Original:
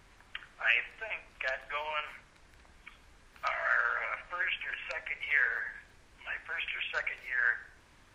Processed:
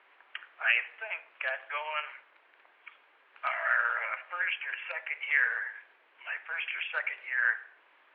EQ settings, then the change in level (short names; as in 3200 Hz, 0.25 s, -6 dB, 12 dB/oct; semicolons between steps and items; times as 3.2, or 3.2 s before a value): Bessel high-pass 590 Hz, order 6; steep low-pass 3100 Hz 36 dB/oct; +2.0 dB